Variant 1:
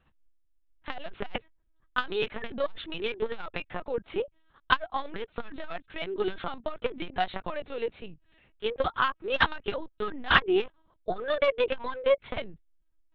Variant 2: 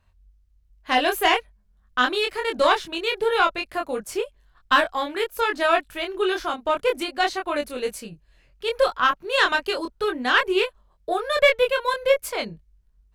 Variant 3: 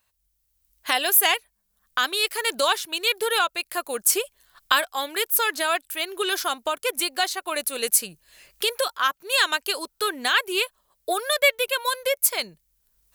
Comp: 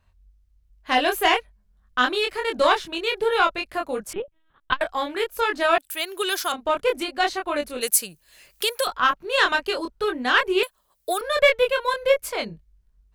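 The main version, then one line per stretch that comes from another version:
2
0:04.13–0:04.81: punch in from 1
0:05.78–0:06.52: punch in from 3
0:07.81–0:08.87: punch in from 3
0:10.63–0:11.21: punch in from 3

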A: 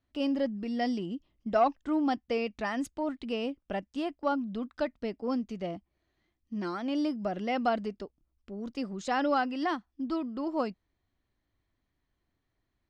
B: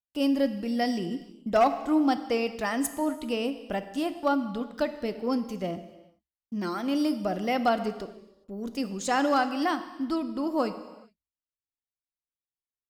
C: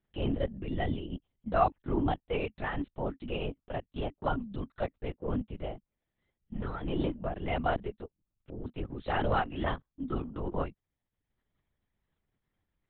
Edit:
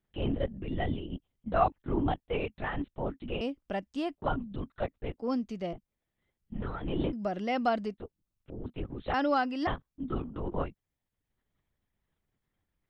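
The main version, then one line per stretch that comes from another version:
C
0:03.41–0:04.15: punch in from A
0:05.19–0:05.73: punch in from A
0:07.13–0:07.94: punch in from A
0:09.14–0:09.67: punch in from A
not used: B

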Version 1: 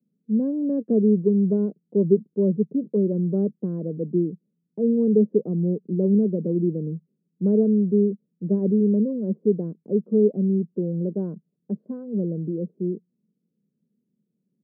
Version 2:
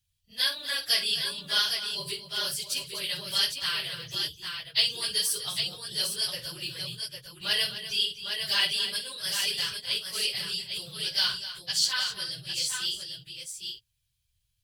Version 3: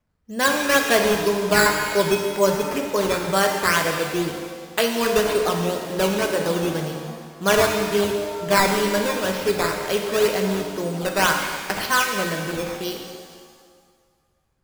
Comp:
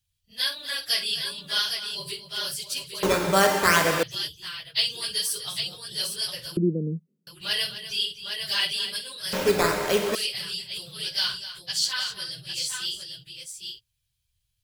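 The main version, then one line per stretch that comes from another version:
2
0:03.03–0:04.03: punch in from 3
0:06.57–0:07.27: punch in from 1
0:09.33–0:10.15: punch in from 3

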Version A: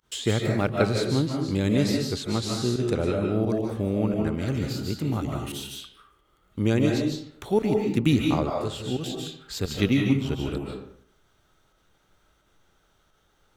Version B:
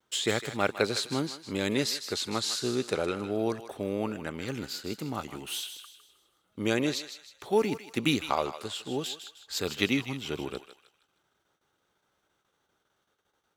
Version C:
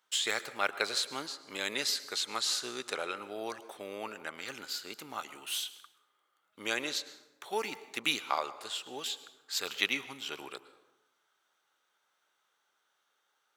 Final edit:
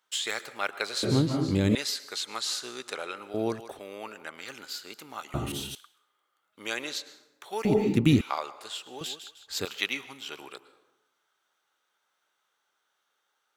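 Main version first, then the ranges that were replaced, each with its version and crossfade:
C
0:01.03–0:01.75: punch in from A
0:03.34–0:03.79: punch in from B
0:05.34–0:05.75: punch in from A
0:07.65–0:08.21: punch in from A
0:09.01–0:09.65: punch in from B

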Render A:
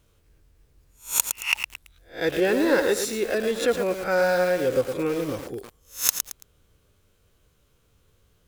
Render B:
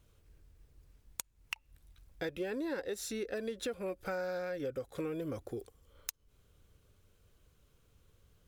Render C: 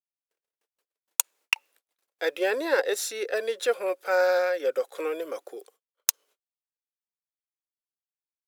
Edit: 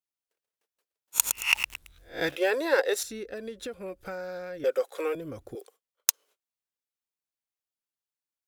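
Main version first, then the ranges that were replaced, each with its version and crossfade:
C
0:01.20–0:02.29: punch in from A, crossfade 0.16 s
0:03.03–0:04.64: punch in from B
0:05.15–0:05.55: punch in from B

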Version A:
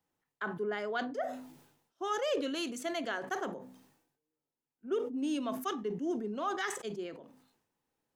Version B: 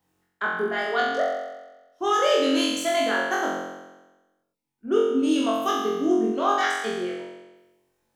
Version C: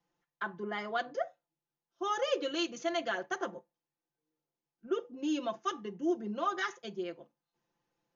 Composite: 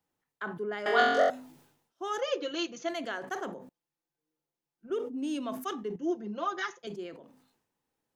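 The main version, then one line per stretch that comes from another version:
A
0:00.86–0:01.30: punch in from B
0:02.21–0:02.89: punch in from C
0:03.69–0:04.90: punch in from C
0:05.96–0:06.87: punch in from C

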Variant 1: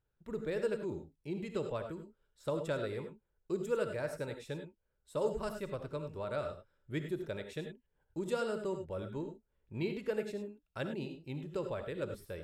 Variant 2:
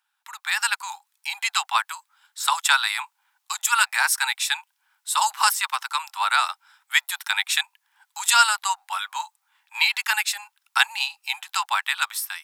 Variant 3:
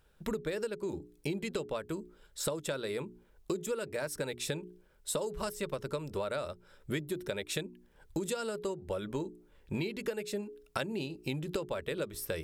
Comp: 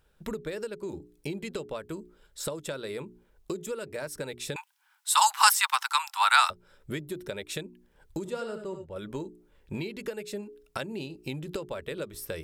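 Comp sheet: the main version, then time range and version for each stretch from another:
3
0:04.56–0:06.50: punch in from 2
0:08.25–0:08.96: punch in from 1

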